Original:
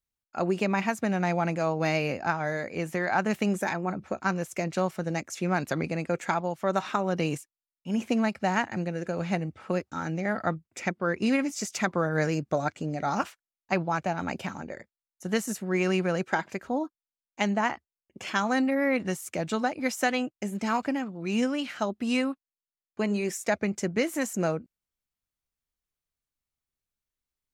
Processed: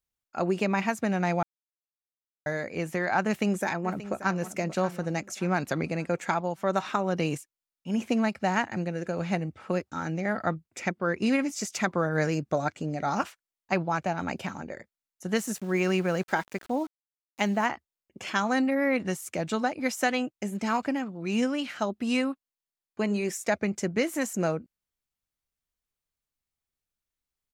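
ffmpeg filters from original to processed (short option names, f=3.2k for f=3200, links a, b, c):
-filter_complex "[0:a]asplit=2[a][b];[b]afade=t=in:st=3.26:d=0.01,afade=t=out:st=4.42:d=0.01,aecho=0:1:580|1160|1740|2320:0.199526|0.0798105|0.0319242|0.0127697[c];[a][c]amix=inputs=2:normalize=0,asettb=1/sr,asplit=3[d][e][f];[d]atrim=end=15.364[g];[e]atrim=start=15.36:end=17.66,asetpts=PTS-STARTPTS,afade=t=in:d=0.004:c=qsin,afade=t=out:st=2.296:d=0.004:c=qsin,aeval=exprs='val(0)*gte(abs(val(0)),0.00631)':c=same[h];[f]atrim=start=17.656[i];[g][h]acrossfade=d=0.004:c1=hsin:c2=qsin[j];[j][i]acrossfade=d=0.004:c1=qsin:c2=hsin,asplit=3[k][l][m];[k]atrim=end=1.43,asetpts=PTS-STARTPTS,afade=t=out:st=1.426:d=0.004:c=hsin[n];[l]atrim=start=1.43:end=2.46,asetpts=PTS-STARTPTS,volume=0[o];[m]atrim=start=2.46,asetpts=PTS-STARTPTS,afade=t=in:d=0.004:c=hsin[p];[n][o][p]concat=n=3:v=0:a=1"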